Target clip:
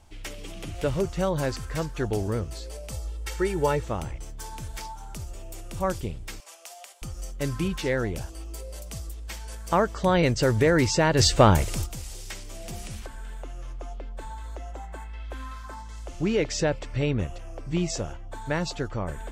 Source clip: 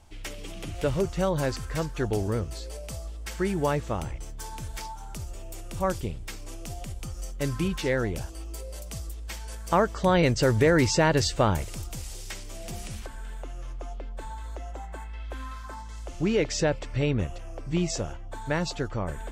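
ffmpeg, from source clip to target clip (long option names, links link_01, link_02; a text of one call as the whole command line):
ffmpeg -i in.wav -filter_complex "[0:a]asettb=1/sr,asplit=3[link_01][link_02][link_03];[link_01]atrim=end=2.924[link_04];[link_02]atrim=start=2.92:end=3.85,asetpts=PTS-STARTPTS,afade=type=in:duration=0.004:curve=qsin,afade=type=out:start_time=0.926:duration=0.004:curve=qsin,aecho=1:1:2.2:0.67,atrim=end_sample=41013[link_05];[link_03]atrim=start=3.846[link_06];[link_04][link_05]acrossfade=duration=0.004:curve1=hsin:curve2=qsin[link_07];[link_07][link_06]acrossfade=duration=0.004:curve1=qsin:curve2=hsin,asettb=1/sr,asplit=3[link_08][link_09][link_10];[link_08]atrim=end=6.404[link_11];[link_09]atrim=start=6.4:end=7.02,asetpts=PTS-STARTPTS,afade=type=in:duration=0.004:curve=qsin,afade=type=out:start_time=0.616:duration=0.004:curve=qsin,highpass=frequency=650:width=0.5412,highpass=frequency=650:width=1.3066[link_12];[link_10]atrim=start=7.016[link_13];[link_11][link_12]acrossfade=duration=0.004:curve1=hsin:curve2=qsin[link_14];[link_14][link_13]acrossfade=duration=0.004:curve1=qsin:curve2=hsin,asplit=3[link_15][link_16][link_17];[link_15]afade=type=out:start_time=11.18:duration=0.02[link_18];[link_16]acontrast=80,afade=type=in:start_time=11.18:duration=0.02,afade=type=out:start_time=11.85:duration=0.02[link_19];[link_17]afade=type=in:start_time=11.85:duration=0.02[link_20];[link_18][link_19][link_20]amix=inputs=3:normalize=0" out.wav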